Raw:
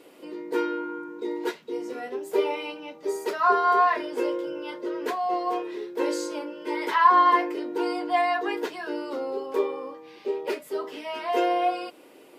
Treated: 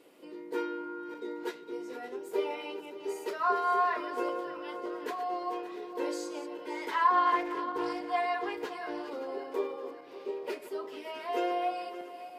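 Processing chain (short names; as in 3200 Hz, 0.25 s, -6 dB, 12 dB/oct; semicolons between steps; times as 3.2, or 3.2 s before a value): regenerating reverse delay 0.286 s, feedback 67%, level -12 dB; 7–9.14 Doppler distortion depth 0.11 ms; gain -7.5 dB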